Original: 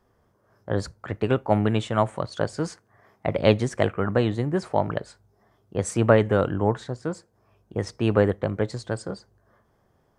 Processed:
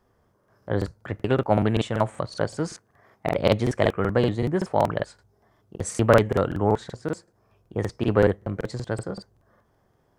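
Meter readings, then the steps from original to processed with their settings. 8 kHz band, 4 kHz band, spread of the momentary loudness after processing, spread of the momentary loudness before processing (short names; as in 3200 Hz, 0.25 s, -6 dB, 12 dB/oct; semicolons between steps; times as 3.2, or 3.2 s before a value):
0.0 dB, 0.0 dB, 12 LU, 12 LU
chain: crackling interface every 0.19 s, samples 2048, repeat, from 0.39; Doppler distortion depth 0.12 ms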